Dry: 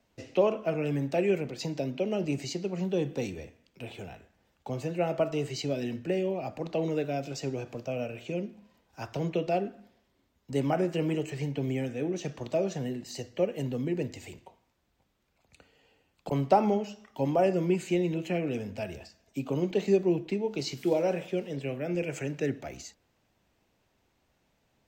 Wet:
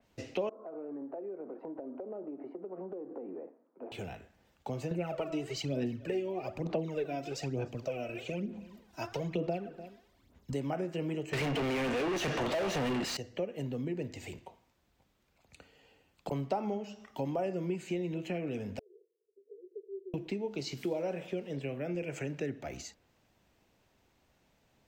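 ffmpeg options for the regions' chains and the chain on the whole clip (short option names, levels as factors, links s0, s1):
-filter_complex "[0:a]asettb=1/sr,asplit=3[s0][s1][s2];[s0]atrim=end=0.494[s3];[s1]atrim=start=0.49:end=3.92,asetpts=PTS-STARTPTS,afade=t=in:d=0.004:c=qsin,afade=t=out:st=3.426:d=0.004:c=qsin,asuperpass=centerf=570:order=8:qfactor=0.57,acompressor=threshold=0.0112:ratio=10:attack=3.2:release=140:knee=1:detection=peak[s4];[s2]atrim=start=3.916[s5];[s3][s4]acrossfade=d=0.004:c1=hsin:c2=qsin[s6];[s6][s5]acrossfade=d=0.004:c1=qsin:c2=hsin,asettb=1/sr,asplit=3[s7][s8][s9];[s7]atrim=end=4.914[s10];[s8]atrim=start=4.91:end=10.54,asetpts=PTS-STARTPTS,afade=t=in:d=0.004:c=qsin,afade=t=out:st=5.626:d=0.004:c=qsin,aphaser=in_gain=1:out_gain=1:delay=3.1:decay=0.67:speed=1.1:type=sinusoidal,aecho=1:1:299:0.0668,atrim=end_sample=248283[s11];[s9]atrim=start=10.536[s12];[s10][s11]acrossfade=d=0.004:c1=hsin:c2=qsin[s13];[s13][s12]acrossfade=d=0.004:c1=qsin:c2=hsin,asettb=1/sr,asplit=3[s14][s15][s16];[s14]atrim=end=11.334[s17];[s15]atrim=start=11.33:end=13.17,asetpts=PTS-STARTPTS,afade=t=in:d=0.004:c=qsin,afade=t=out:st=1.836:d=0.004:c=qsin,asplit=2[s18][s19];[s19]highpass=f=720:p=1,volume=100,asoftclip=type=tanh:threshold=0.133[s20];[s18][s20]amix=inputs=2:normalize=0,lowpass=f=3200:p=1,volume=0.501,aeval=exprs='val(0)+0.00631*sin(2*PI*2800*n/s)':c=same[s21];[s16]atrim=start=13.166[s22];[s17][s21]acrossfade=d=0.004:c1=hsin:c2=qsin[s23];[s23][s22]acrossfade=d=0.004:c1=qsin:c2=hsin,asettb=1/sr,asplit=3[s24][s25][s26];[s24]atrim=end=18.794[s27];[s25]atrim=start=18.79:end=20.14,asetpts=PTS-STARTPTS,afade=t=in:d=0.004:c=qsin,afade=t=out:st=1.346:d=0.004:c=qsin,aecho=1:1:1.1:0.36,atrim=end_sample=59535,acompressor=threshold=0.00282:ratio=2:attack=3.2:release=140:knee=1:detection=peak,asuperpass=centerf=420:order=8:qfactor=3.7[s28];[s26]atrim=start=20.136[s29];[s27][s28]acrossfade=d=0.004:c1=hsin:c2=qsin[s30];[s30][s29]acrossfade=d=0.004:c1=qsin:c2=hsin,acompressor=threshold=0.0141:ratio=2.5,adynamicequalizer=threshold=0.00126:dfrequency=3900:dqfactor=0.7:tfrequency=3900:tqfactor=0.7:attack=5:release=100:ratio=0.375:range=2:mode=cutabove:tftype=highshelf,volume=1.19"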